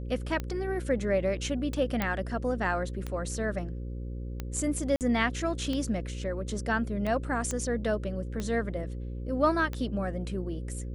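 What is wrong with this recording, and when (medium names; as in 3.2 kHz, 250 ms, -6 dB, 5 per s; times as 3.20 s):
buzz 60 Hz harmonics 9 -36 dBFS
tick 45 rpm -20 dBFS
2.02 s: pop -14 dBFS
4.96–5.01 s: dropout 48 ms
7.51 s: pop -19 dBFS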